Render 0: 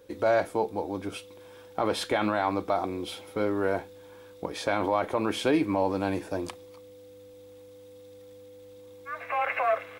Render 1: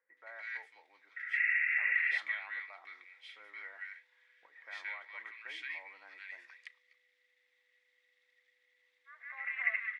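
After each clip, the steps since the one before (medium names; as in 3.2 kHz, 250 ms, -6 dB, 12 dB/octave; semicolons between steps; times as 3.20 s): painted sound noise, 1.16–2.01 s, 1.3–2.8 kHz -30 dBFS; ladder band-pass 2 kHz, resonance 90%; bands offset in time lows, highs 170 ms, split 1.4 kHz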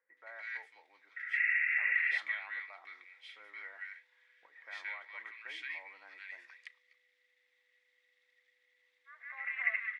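no audible change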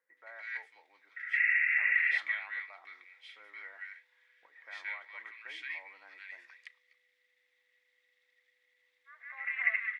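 dynamic bell 2.1 kHz, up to +3 dB, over -40 dBFS, Q 0.86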